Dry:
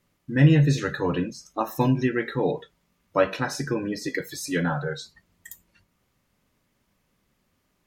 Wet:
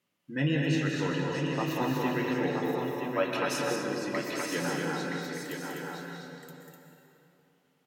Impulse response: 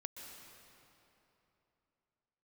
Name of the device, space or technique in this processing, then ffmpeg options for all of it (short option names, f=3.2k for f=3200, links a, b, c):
stadium PA: -filter_complex "[0:a]highpass=180,equalizer=f=2.9k:t=o:w=0.51:g=6,aecho=1:1:192.4|250.7:0.501|0.631[a];[1:a]atrim=start_sample=2205[b];[a][b]afir=irnorm=-1:irlink=0,asettb=1/sr,asplit=3[c][d][e];[c]atrim=end=3.304[f];[d]atrim=start=3.3:end=3.76,asetpts=PTS-STARTPTS,afade=t=in:d=0.004:c=qsin,afade=t=out:st=0.456:d=0.004:c=qsin,aemphasis=mode=production:type=cd[g];[e]atrim=start=3.756[h];[f][g]acrossfade=d=0.004:c1=hsin:c2=qsin[i];[i][h]acrossfade=d=0.004:c1=qsin:c2=hsin,aecho=1:1:972:0.531,volume=-3.5dB"